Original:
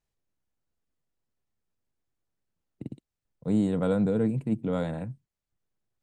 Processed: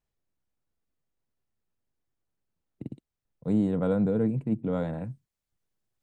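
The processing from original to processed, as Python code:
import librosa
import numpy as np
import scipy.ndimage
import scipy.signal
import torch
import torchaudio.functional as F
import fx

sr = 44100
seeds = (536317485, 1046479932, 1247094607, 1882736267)

y = fx.high_shelf(x, sr, hz=2900.0, db=fx.steps((0.0, -5.0), (3.52, -11.5), (5.03, 2.5)))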